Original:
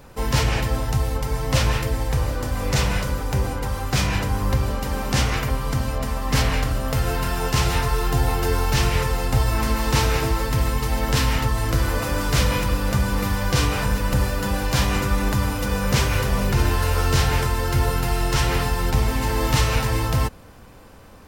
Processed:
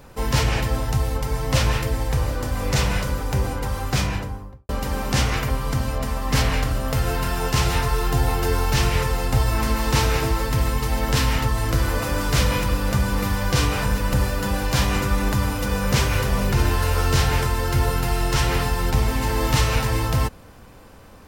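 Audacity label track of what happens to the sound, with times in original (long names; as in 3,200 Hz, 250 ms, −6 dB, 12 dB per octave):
3.860000	4.690000	fade out and dull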